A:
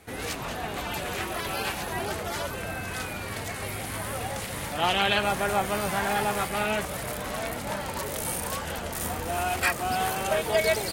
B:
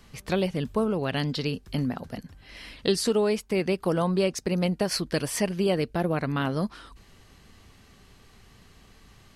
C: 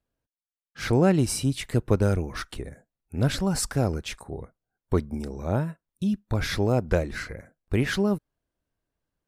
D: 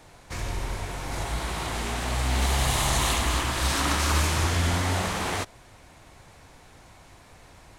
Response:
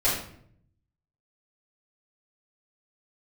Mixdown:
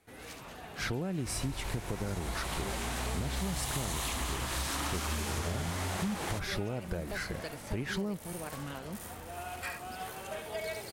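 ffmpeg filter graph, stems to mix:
-filter_complex "[0:a]volume=-14.5dB,asplit=2[link_01][link_02];[link_02]volume=-6dB[link_03];[1:a]acrossover=split=420[link_04][link_05];[link_04]aeval=exprs='val(0)*(1-0.7/2+0.7/2*cos(2*PI*3*n/s))':channel_layout=same[link_06];[link_05]aeval=exprs='val(0)*(1-0.7/2-0.7/2*cos(2*PI*3*n/s))':channel_layout=same[link_07];[link_06][link_07]amix=inputs=2:normalize=0,adelay=2300,volume=-12.5dB[link_08];[2:a]equalizer=frequency=180:width_type=o:width=0.26:gain=4.5,alimiter=limit=-16dB:level=0:latency=1:release=325,volume=-1dB[link_09];[3:a]highshelf=frequency=11000:gain=10,adelay=950,volume=-4dB[link_10];[link_03]aecho=0:1:71:1[link_11];[link_01][link_08][link_09][link_10][link_11]amix=inputs=5:normalize=0,acompressor=threshold=-31dB:ratio=6"

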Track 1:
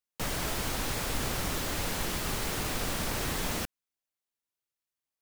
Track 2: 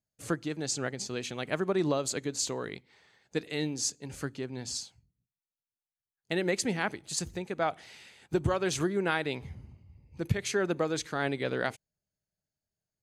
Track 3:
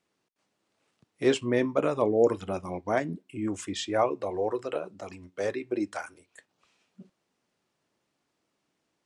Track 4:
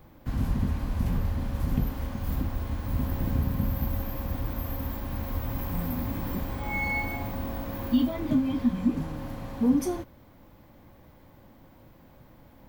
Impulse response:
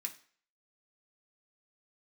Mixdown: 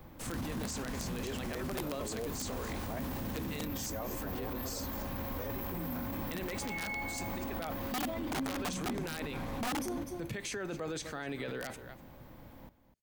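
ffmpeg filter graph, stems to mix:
-filter_complex "[0:a]volume=-12.5dB[link_01];[1:a]volume=-1.5dB,asplit=3[link_02][link_03][link_04];[link_03]volume=-7.5dB[link_05];[link_04]volume=-18.5dB[link_06];[2:a]volume=-9dB[link_07];[3:a]volume=1dB,asplit=3[link_08][link_09][link_10];[link_09]volume=-19dB[link_11];[link_10]volume=-14dB[link_12];[4:a]atrim=start_sample=2205[link_13];[link_05][link_11]amix=inputs=2:normalize=0[link_14];[link_14][link_13]afir=irnorm=-1:irlink=0[link_15];[link_06][link_12]amix=inputs=2:normalize=0,aecho=0:1:249:1[link_16];[link_01][link_02][link_07][link_08][link_15][link_16]amix=inputs=6:normalize=0,acrossover=split=140[link_17][link_18];[link_17]acompressor=threshold=-39dB:ratio=4[link_19];[link_19][link_18]amix=inputs=2:normalize=0,aeval=exprs='(mod(7.94*val(0)+1,2)-1)/7.94':channel_layout=same,alimiter=level_in=6dB:limit=-24dB:level=0:latency=1:release=11,volume=-6dB"

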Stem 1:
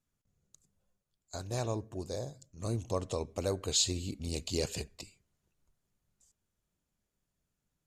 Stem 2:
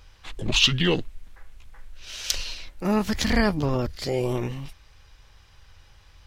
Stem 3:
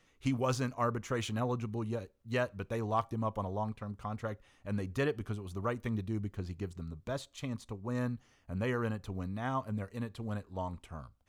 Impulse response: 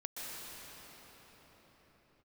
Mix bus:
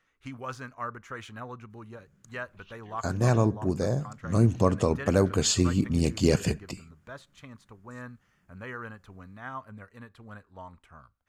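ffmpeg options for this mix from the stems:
-filter_complex "[0:a]equalizer=frequency=180:width_type=o:width=2.2:gain=14.5,bandreject=frequency=3900:width=6.3,adelay=1700,volume=2.5dB[link_01];[1:a]highshelf=frequency=3300:gain=-11,acrossover=split=1000[link_02][link_03];[link_02]aeval=exprs='val(0)*(1-0.7/2+0.7/2*cos(2*PI*3.3*n/s))':channel_layout=same[link_04];[link_03]aeval=exprs='val(0)*(1-0.7/2-0.7/2*cos(2*PI*3.3*n/s))':channel_layout=same[link_05];[link_04][link_05]amix=inputs=2:normalize=0,adelay=2050,volume=-19.5dB[link_06];[2:a]volume=-9.5dB,asplit=2[link_07][link_08];[link_08]apad=whole_len=366617[link_09];[link_06][link_09]sidechaincompress=threshold=-55dB:ratio=5:attack=16:release=347[link_10];[link_01][link_10][link_07]amix=inputs=3:normalize=0,equalizer=frequency=1500:width_type=o:width=1.2:gain=12"

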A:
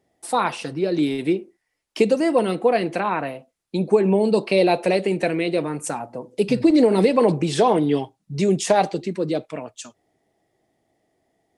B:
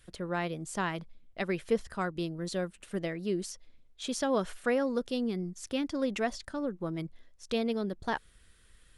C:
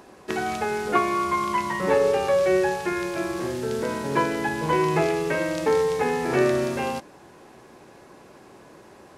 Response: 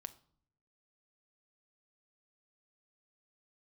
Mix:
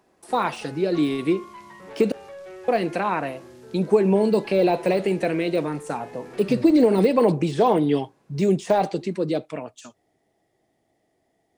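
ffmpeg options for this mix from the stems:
-filter_complex "[0:a]deesser=0.9,volume=-1dB,asplit=3[link_01][link_02][link_03];[link_01]atrim=end=2.12,asetpts=PTS-STARTPTS,afade=type=out:start_time=2.116:duration=0.004:curve=hsin[link_04];[link_02]atrim=start=2.12:end=2.68,asetpts=PTS-STARTPTS,volume=0[link_05];[link_03]atrim=start=2.68,asetpts=PTS-STARTPTS,afade=type=in:duration=0.004:curve=hsin[link_06];[link_04][link_05][link_06]concat=n=3:v=0:a=1,asplit=2[link_07][link_08];[link_08]volume=-22.5dB[link_09];[2:a]asoftclip=type=tanh:threshold=-20.5dB,volume=-16dB[link_10];[3:a]atrim=start_sample=2205[link_11];[link_09][link_11]afir=irnorm=-1:irlink=0[link_12];[link_07][link_10][link_12]amix=inputs=3:normalize=0"

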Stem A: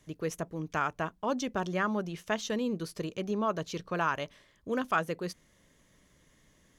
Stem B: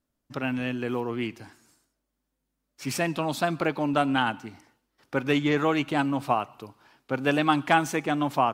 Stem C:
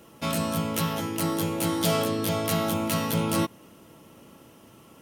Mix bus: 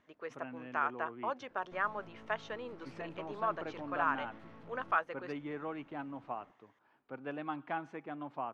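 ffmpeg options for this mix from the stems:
ffmpeg -i stem1.wav -i stem2.wav -i stem3.wav -filter_complex "[0:a]highpass=790,volume=0dB[link_01];[1:a]highpass=frequency=210:poles=1,acompressor=mode=upward:threshold=-41dB:ratio=2.5,volume=-15.5dB[link_02];[2:a]acompressor=threshold=-32dB:ratio=6,aeval=exprs='(tanh(126*val(0)+0.75)-tanh(0.75))/126':channel_layout=same,adelay=1500,volume=-9.5dB[link_03];[link_01][link_02][link_03]amix=inputs=3:normalize=0,lowpass=1800" out.wav

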